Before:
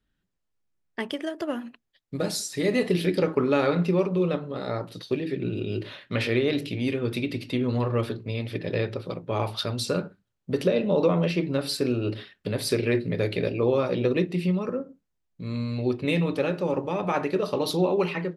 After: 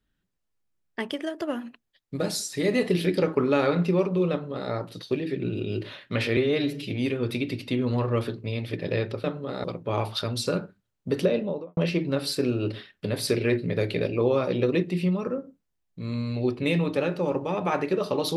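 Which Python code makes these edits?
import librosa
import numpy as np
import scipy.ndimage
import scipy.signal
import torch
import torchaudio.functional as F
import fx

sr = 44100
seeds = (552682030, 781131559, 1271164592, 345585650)

y = fx.studio_fade_out(x, sr, start_s=10.65, length_s=0.54)
y = fx.edit(y, sr, fx.duplicate(start_s=4.31, length_s=0.4, to_s=9.06),
    fx.stretch_span(start_s=6.37, length_s=0.36, factor=1.5), tone=tone)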